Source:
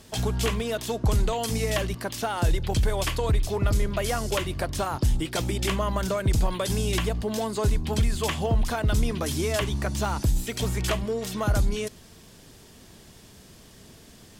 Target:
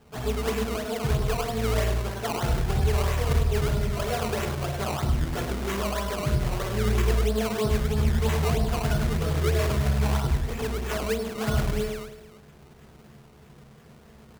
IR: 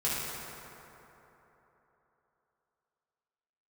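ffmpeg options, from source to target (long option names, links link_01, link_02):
-filter_complex "[0:a]aresample=11025,aresample=44100,aecho=1:1:102|204|306|408|510|612:0.631|0.309|0.151|0.0742|0.0364|0.0178[link_01];[1:a]atrim=start_sample=2205,atrim=end_sample=3087[link_02];[link_01][link_02]afir=irnorm=-1:irlink=0,acrusher=samples=18:mix=1:aa=0.000001:lfo=1:lforange=18:lforate=3.1,volume=-7.5dB"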